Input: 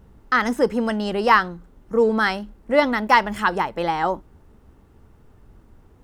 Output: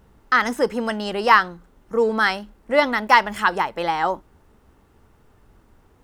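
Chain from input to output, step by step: bass shelf 450 Hz -8 dB; trim +2.5 dB

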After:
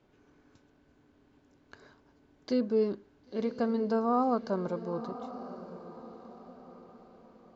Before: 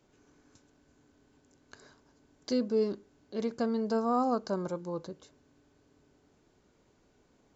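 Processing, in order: low-pass 3.6 kHz 12 dB/octave; on a send: echo that smears into a reverb 1025 ms, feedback 40%, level -13 dB; on the sum: trim +1 dB

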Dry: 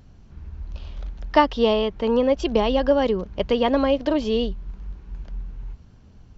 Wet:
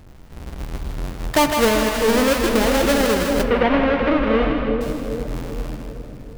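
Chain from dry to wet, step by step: square wave that keeps the level; two-band feedback delay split 600 Hz, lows 393 ms, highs 158 ms, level -5 dB; peak limiter -10 dBFS, peak gain reduction 7 dB; 3.43–4.81 s: low-pass 2.8 kHz 24 dB/octave; on a send at -8 dB: reverberation RT60 2.6 s, pre-delay 7 ms

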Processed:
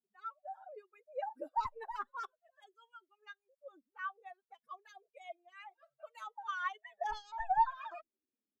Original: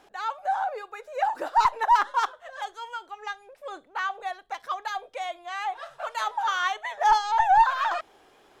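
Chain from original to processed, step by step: expander on every frequency bin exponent 2; treble shelf 2 kHz -12 dB; band-stop 4.1 kHz, Q 24; endless flanger 2.3 ms -0.43 Hz; trim -3.5 dB

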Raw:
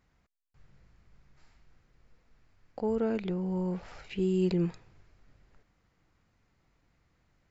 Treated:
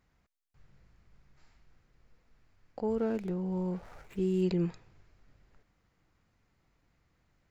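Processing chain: 2.90–4.43 s: median filter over 15 samples; trim -1.5 dB

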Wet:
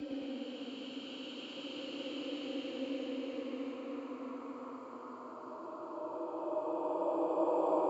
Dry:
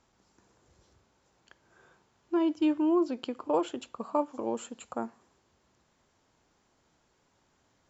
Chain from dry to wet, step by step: Paulstretch 21×, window 0.25 s, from 3.16 s; frequency shift +34 Hz; ever faster or slower copies 107 ms, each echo -1 st, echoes 2; trim -7 dB

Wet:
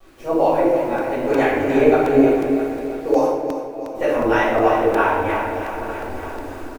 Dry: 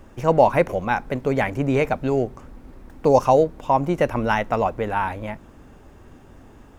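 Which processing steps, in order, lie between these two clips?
backward echo that repeats 225 ms, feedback 70%, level -13.5 dB; resonant low shelf 240 Hz -8 dB, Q 3; level rider gain up to 13 dB; harmonic tremolo 3.3 Hz, depth 70%, crossover 630 Hz; bit crusher 8-bit; 3.25–3.95 s: feedback comb 110 Hz, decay 1.6 s, mix 100%; feedback delay 331 ms, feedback 56%, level -10.5 dB; reverberation RT60 1.0 s, pre-delay 6 ms, DRR -11 dB; crackling interface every 0.36 s, samples 128, repeat, from 0.98 s; trim -12 dB

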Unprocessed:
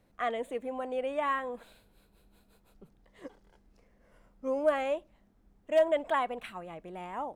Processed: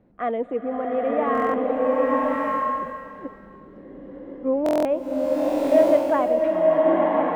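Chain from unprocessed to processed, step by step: low-pass 2.2 kHz 12 dB/octave; peaking EQ 260 Hz +12 dB 3 oct; buffer glitch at 1.33/4.64 s, samples 1024, times 8; swelling reverb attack 1130 ms, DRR -3.5 dB

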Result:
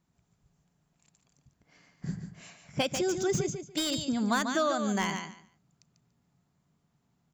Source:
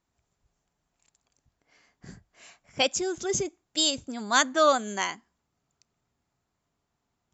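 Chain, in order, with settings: peaking EQ 160 Hz +14.5 dB 1 oct; compression 12:1, threshold -24 dBFS, peak gain reduction 10 dB; feedback delay 144 ms, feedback 19%, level -7.5 dB; slew-rate limiter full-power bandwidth 140 Hz

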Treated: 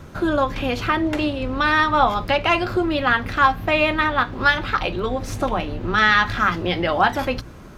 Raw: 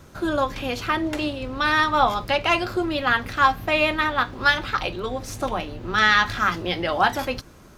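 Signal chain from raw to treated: tone controls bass +3 dB, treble -7 dB; hum notches 60/120 Hz; in parallel at 0 dB: compression, threshold -28 dBFS, peak gain reduction 15.5 dB

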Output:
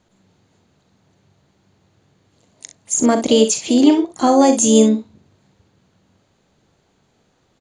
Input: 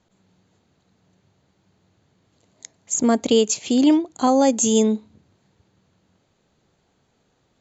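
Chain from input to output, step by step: early reflections 41 ms -10 dB, 63 ms -11.5 dB; harmony voices +5 st -14 dB; trim +3.5 dB

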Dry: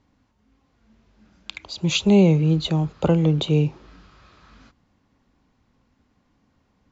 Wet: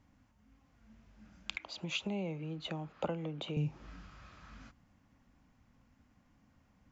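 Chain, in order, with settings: fifteen-band graphic EQ 400 Hz -9 dB, 1 kHz -3 dB, 4 kHz -7 dB; compression 6:1, threshold -28 dBFS, peak gain reduction 13.5 dB; 1.56–3.57 s: three-band isolator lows -16 dB, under 250 Hz, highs -13 dB, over 4.2 kHz; trim -1.5 dB

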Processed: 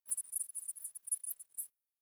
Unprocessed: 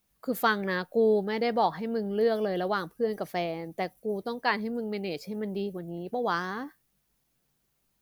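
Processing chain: frequency-domain pitch shifter -9.5 st; steep high-pass 2.3 kHz 72 dB/octave; waveshaping leveller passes 2; wide varispeed 3.98×; three bands expanded up and down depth 70%; trim +5 dB

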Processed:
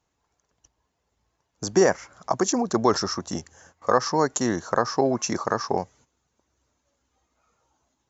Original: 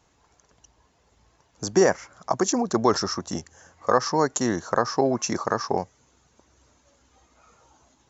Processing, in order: gate -52 dBFS, range -12 dB

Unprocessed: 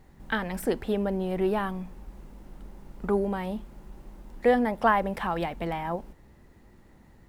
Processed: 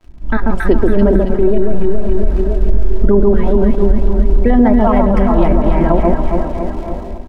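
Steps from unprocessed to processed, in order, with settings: random holes in the spectrogram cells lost 28%; tremolo saw up 2.5 Hz, depth 80%; crackle 210 per s -40 dBFS; tilt EQ -4 dB/octave; tape echo 497 ms, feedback 78%, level -15.5 dB, low-pass 1.9 kHz; flange 0.51 Hz, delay 8.6 ms, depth 8.1 ms, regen +88%; treble shelf 12 kHz -6.5 dB; comb 3.1 ms, depth 50%; echo whose repeats swap between lows and highs 138 ms, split 1.2 kHz, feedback 77%, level -2.5 dB; level rider gain up to 10 dB; loudness maximiser +12 dB; attacks held to a fixed rise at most 340 dB/s; trim -1 dB

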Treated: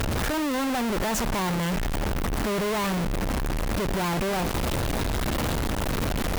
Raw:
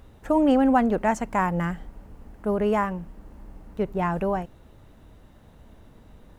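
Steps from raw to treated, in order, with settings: one-bit comparator; Chebyshev shaper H 5 -14 dB, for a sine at -26 dBFS; hum 50 Hz, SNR 30 dB

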